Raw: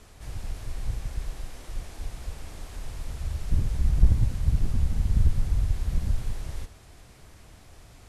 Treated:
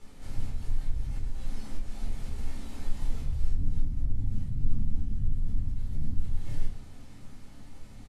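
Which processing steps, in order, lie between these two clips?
spectral noise reduction 7 dB; peaking EQ 260 Hz +14 dB 0.28 oct; compression 5:1, threshold -33 dBFS, peak gain reduction 19 dB; peak limiter -30.5 dBFS, peak gain reduction 7 dB; harmony voices -3 st -1 dB; simulated room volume 330 m³, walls furnished, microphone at 4.2 m; trim -5.5 dB

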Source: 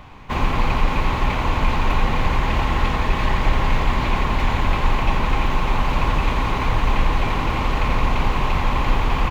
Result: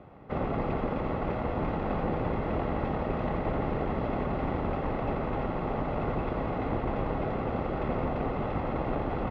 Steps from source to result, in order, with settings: comb filter that takes the minimum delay 1.5 ms; band-pass filter 330 Hz, Q 1.4; distance through air 150 m; trim +4 dB

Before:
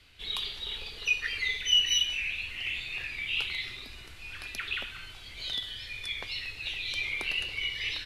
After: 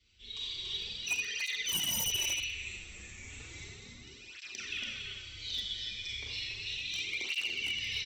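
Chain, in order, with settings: 2.51–4.02 s: median filter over 15 samples; rippled Chebyshev low-pass 7.8 kHz, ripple 9 dB; high-order bell 1.2 kHz -13 dB 2.5 oct; band-stop 1.6 kHz, Q 15; delay 285 ms -6 dB; Schroeder reverb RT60 0.89 s, combs from 30 ms, DRR -2 dB; level rider gain up to 6 dB; wavefolder -24 dBFS; cancelling through-zero flanger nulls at 0.34 Hz, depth 7.8 ms

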